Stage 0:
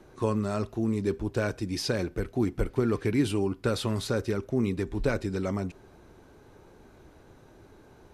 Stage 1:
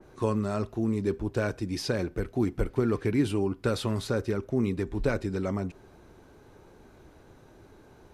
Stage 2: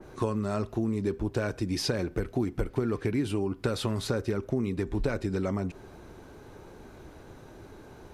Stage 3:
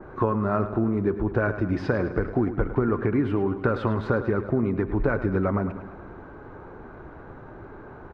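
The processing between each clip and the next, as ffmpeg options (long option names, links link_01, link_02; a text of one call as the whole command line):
ffmpeg -i in.wav -af "adynamicequalizer=threshold=0.00501:dfrequency=2300:dqfactor=0.7:tfrequency=2300:tqfactor=0.7:attack=5:release=100:ratio=0.375:range=2.5:mode=cutabove:tftype=highshelf" out.wav
ffmpeg -i in.wav -af "acompressor=threshold=-31dB:ratio=5,volume=5.5dB" out.wav
ffmpeg -i in.wav -filter_complex "[0:a]lowpass=frequency=1400:width_type=q:width=1.8,asplit=2[link_01][link_02];[link_02]aecho=0:1:105|210|315|420|525|630:0.251|0.146|0.0845|0.049|0.0284|0.0165[link_03];[link_01][link_03]amix=inputs=2:normalize=0,volume=4.5dB" out.wav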